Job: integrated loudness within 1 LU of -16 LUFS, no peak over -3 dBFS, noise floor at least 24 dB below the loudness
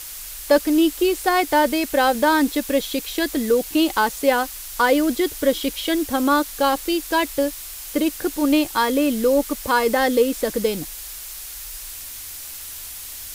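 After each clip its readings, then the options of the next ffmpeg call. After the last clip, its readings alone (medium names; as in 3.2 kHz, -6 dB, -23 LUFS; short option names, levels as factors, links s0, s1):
noise floor -35 dBFS; noise floor target -44 dBFS; loudness -20.0 LUFS; peak level -4.5 dBFS; loudness target -16.0 LUFS
-> -af "afftdn=nr=9:nf=-35"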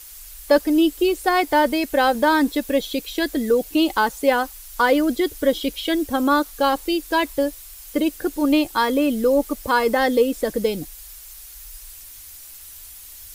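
noise floor -41 dBFS; noise floor target -45 dBFS
-> -af "afftdn=nr=6:nf=-41"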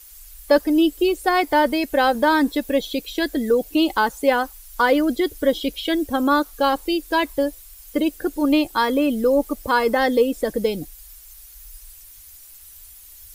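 noise floor -45 dBFS; loudness -20.5 LUFS; peak level -5.0 dBFS; loudness target -16.0 LUFS
-> -af "volume=1.68,alimiter=limit=0.708:level=0:latency=1"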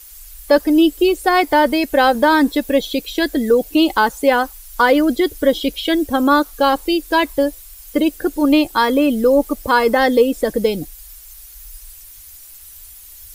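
loudness -16.0 LUFS; peak level -3.0 dBFS; noise floor -40 dBFS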